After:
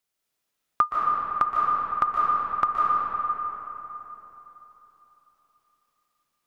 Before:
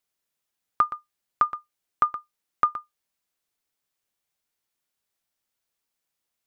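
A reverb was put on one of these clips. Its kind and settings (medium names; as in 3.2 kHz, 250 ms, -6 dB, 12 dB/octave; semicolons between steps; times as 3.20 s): algorithmic reverb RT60 3.8 s, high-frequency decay 0.55×, pre-delay 110 ms, DRR -4 dB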